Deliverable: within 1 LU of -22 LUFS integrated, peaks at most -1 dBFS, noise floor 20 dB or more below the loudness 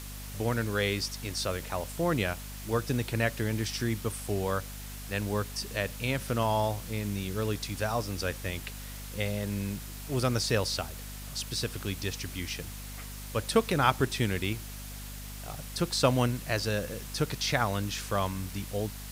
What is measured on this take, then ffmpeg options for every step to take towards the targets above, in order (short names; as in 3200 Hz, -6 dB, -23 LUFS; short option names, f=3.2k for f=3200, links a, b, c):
hum 50 Hz; harmonics up to 250 Hz; hum level -40 dBFS; noise floor -41 dBFS; noise floor target -52 dBFS; loudness -31.5 LUFS; peak -9.5 dBFS; loudness target -22.0 LUFS
-> -af "bandreject=f=50:t=h:w=6,bandreject=f=100:t=h:w=6,bandreject=f=150:t=h:w=6,bandreject=f=200:t=h:w=6,bandreject=f=250:t=h:w=6"
-af "afftdn=nr=11:nf=-41"
-af "volume=9.5dB,alimiter=limit=-1dB:level=0:latency=1"